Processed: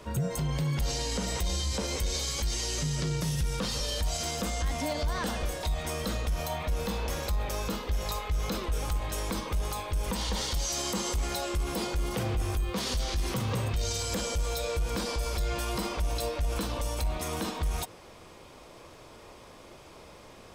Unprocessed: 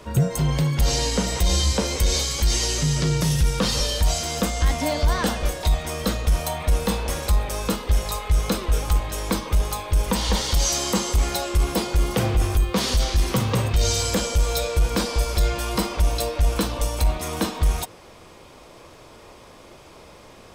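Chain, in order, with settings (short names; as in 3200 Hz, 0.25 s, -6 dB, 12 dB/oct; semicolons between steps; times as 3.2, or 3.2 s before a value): 6.3–8.64 bell 9100 Hz -11 dB 0.24 oct; limiter -18.5 dBFS, peak gain reduction 7 dB; gain -4 dB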